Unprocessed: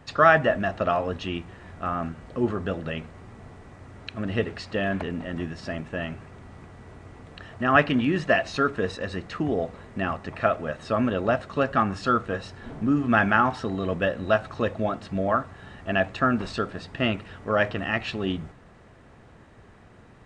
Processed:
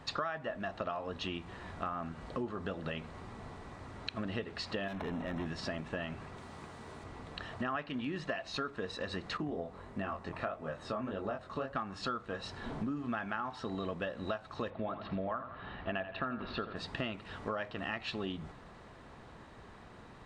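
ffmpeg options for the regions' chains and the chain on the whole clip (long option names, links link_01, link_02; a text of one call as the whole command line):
ffmpeg -i in.wav -filter_complex "[0:a]asettb=1/sr,asplit=3[link_01][link_02][link_03];[link_01]atrim=end=4.884[link_04];[link_02]atrim=start=4.88:end=5.46,asetpts=PTS-STARTPTS,afade=type=in:duration=0.004:curve=qsin,afade=type=out:start_time=0.576:duration=0.004:curve=qsin,acrossover=split=2500[link_05][link_06];[link_06]acompressor=threshold=-59dB:ratio=4:attack=1:release=60[link_07];[link_05][link_07]amix=inputs=2:normalize=0,asoftclip=type=hard:threshold=-28.5dB,asuperstop=centerf=4600:order=4:qfactor=6.2[link_08];[link_03]atrim=start=5.456[link_09];[link_04][link_08]acrossfade=duration=0.004:curve1=hsin:curve2=qsin[link_10];[link_10][link_09]acrossfade=duration=0.004:curve1=qsin:curve2=hsin,asettb=1/sr,asplit=3[link_11][link_12][link_13];[link_11]atrim=end=6.374[link_14];[link_12]atrim=start=6.37:end=7.04,asetpts=PTS-STARTPTS,afade=type=in:duration=0.004:curve=qsin,afade=type=out:start_time=0.666:duration=0.004:curve=qsin,highpass=frequency=120:poles=1,highshelf=frequency=6300:gain=8,asplit=2[link_15][link_16];[link_16]adelay=13,volume=-12dB[link_17];[link_15][link_17]amix=inputs=2:normalize=0,atrim=end_sample=29547[link_18];[link_13]atrim=start=7.036[link_19];[link_14][link_18]acrossfade=duration=0.004:curve1=hsin:curve2=qsin[link_20];[link_20][link_19]acrossfade=duration=0.004:curve1=qsin:curve2=hsin,asettb=1/sr,asplit=3[link_21][link_22][link_23];[link_21]atrim=end=9.374[link_24];[link_22]atrim=start=9.37:end=11.76,asetpts=PTS-STARTPTS,afade=type=in:duration=0.004:curve=qsin,afade=type=out:start_time=2.386:duration=0.004:curve=qsin,equalizer=frequency=4000:width=0.53:gain=-5.5,flanger=delay=19.5:depth=4.4:speed=1.6[link_25];[link_23]atrim=start=11.756[link_26];[link_24][link_25]acrossfade=duration=0.004:curve1=hsin:curve2=qsin[link_27];[link_27][link_26]acrossfade=duration=0.004:curve1=qsin:curve2=hsin,asettb=1/sr,asplit=3[link_28][link_29][link_30];[link_28]atrim=end=14.704[link_31];[link_29]atrim=start=14.7:end=16.76,asetpts=PTS-STARTPTS,afade=type=in:duration=0.004:curve=qsin,afade=type=out:start_time=2.056:duration=0.004:curve=qsin,lowpass=frequency=3500:width=0.5412,lowpass=frequency=3500:width=1.3066,aecho=1:1:84|168|252|336:0.251|0.098|0.0382|0.0149,atrim=end_sample=90846[link_32];[link_30]atrim=start=16.756[link_33];[link_31][link_32]acrossfade=duration=0.004:curve1=hsin:curve2=qsin[link_34];[link_34][link_33]acrossfade=duration=0.004:curve1=qsin:curve2=hsin,equalizer=frequency=100:width_type=o:width=0.67:gain=-4,equalizer=frequency=1000:width_type=o:width=0.67:gain=5,equalizer=frequency=4000:width_type=o:width=0.67:gain=6,acompressor=threshold=-32dB:ratio=10,volume=-2dB" out.wav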